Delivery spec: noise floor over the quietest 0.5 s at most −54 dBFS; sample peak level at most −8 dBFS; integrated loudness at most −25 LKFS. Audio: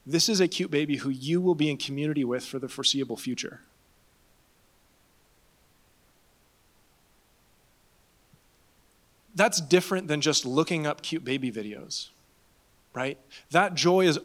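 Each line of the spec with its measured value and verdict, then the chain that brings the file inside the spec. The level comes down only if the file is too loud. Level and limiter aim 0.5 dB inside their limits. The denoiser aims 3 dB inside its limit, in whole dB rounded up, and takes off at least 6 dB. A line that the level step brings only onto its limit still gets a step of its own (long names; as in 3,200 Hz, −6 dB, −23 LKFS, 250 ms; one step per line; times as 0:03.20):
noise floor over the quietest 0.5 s −64 dBFS: in spec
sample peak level −5.5 dBFS: out of spec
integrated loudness −26.5 LKFS: in spec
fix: brickwall limiter −8.5 dBFS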